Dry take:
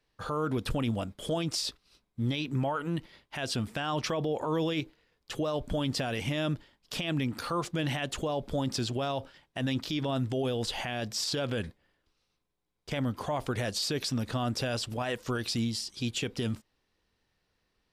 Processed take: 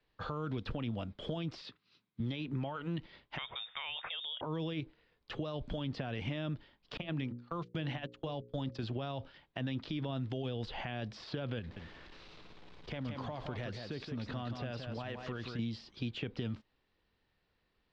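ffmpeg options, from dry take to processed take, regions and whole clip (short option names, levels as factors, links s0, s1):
-filter_complex "[0:a]asettb=1/sr,asplit=3[s0][s1][s2];[s0]atrim=end=1.614[s3];[s1]atrim=start=1.61:end=2.2,asetpts=PTS-STARTPTS,afade=t=in:d=0.004:c=qsin,afade=t=out:st=0.586:d=0.004:c=qsin,highpass=f=110:w=0.5412,highpass=f=110:w=1.3066,equalizer=f=610:w=0.92:g=-10[s4];[s2]atrim=start=2.196[s5];[s3][s4]acrossfade=d=0.004:c1=hsin:c2=qsin[s6];[s6][s5]acrossfade=d=0.004:c1=qsin:c2=hsin,asettb=1/sr,asplit=3[s7][s8][s9];[s7]atrim=end=3.384[s10];[s8]atrim=start=3.38:end=4.41,asetpts=PTS-STARTPTS,afade=t=in:d=0.004:c=qsin,afade=t=out:st=1.026:d=0.004:c=qsin,lowpass=f=3200:t=q:w=0.5098,lowpass=f=3200:t=q:w=0.6013,lowpass=f=3200:t=q:w=0.9,lowpass=f=3200:t=q:w=2.563,afreqshift=-3800,equalizer=f=300:t=o:w=0.79:g=-12.5[s11];[s9]atrim=start=4.406[s12];[s10][s11]acrossfade=d=0.004:c1=hsin:c2=qsin[s13];[s13][s12]acrossfade=d=0.004:c1=qsin:c2=hsin,asettb=1/sr,asplit=3[s14][s15][s16];[s14]atrim=end=6.974[s17];[s15]atrim=start=6.97:end=8.83,asetpts=PTS-STARTPTS,afade=t=in:d=0.004:c=qsin,afade=t=out:st=1.856:d=0.004:c=qsin,agate=range=0.0282:threshold=0.0224:ratio=16:release=100:detection=peak,bandreject=f=60:t=h:w=6,bandreject=f=120:t=h:w=6,bandreject=f=180:t=h:w=6,bandreject=f=240:t=h:w=6,bandreject=f=300:t=h:w=6,bandreject=f=360:t=h:w=6,bandreject=f=420:t=h:w=6,bandreject=f=480:t=h:w=6,bandreject=f=540:t=h:w=6[s18];[s16]atrim=start=8.826[s19];[s17][s18]acrossfade=d=0.004:c1=hsin:c2=qsin[s20];[s20][s19]acrossfade=d=0.004:c1=qsin:c2=hsin,asettb=1/sr,asplit=3[s21][s22][s23];[s21]atrim=end=11.594[s24];[s22]atrim=start=11.59:end=15.59,asetpts=PTS-STARTPTS,afade=t=in:d=0.004:c=qsin,afade=t=out:st=3.996:d=0.004:c=qsin,aeval=exprs='val(0)+0.5*0.00447*sgn(val(0))':c=same,acompressor=threshold=0.0112:ratio=2:attack=3.2:release=140:knee=1:detection=peak,aecho=1:1:172:0.473,atrim=end_sample=176400[s25];[s23]atrim=start=15.586[s26];[s24][s25]acrossfade=d=0.004:c1=hsin:c2=qsin[s27];[s27][s26]acrossfade=d=0.004:c1=qsin:c2=hsin,acrossover=split=200|2500[s28][s29][s30];[s28]acompressor=threshold=0.0141:ratio=4[s31];[s29]acompressor=threshold=0.0112:ratio=4[s32];[s30]acompressor=threshold=0.00398:ratio=4[s33];[s31][s32][s33]amix=inputs=3:normalize=0,lowpass=f=4300:w=0.5412,lowpass=f=4300:w=1.3066,volume=0.891"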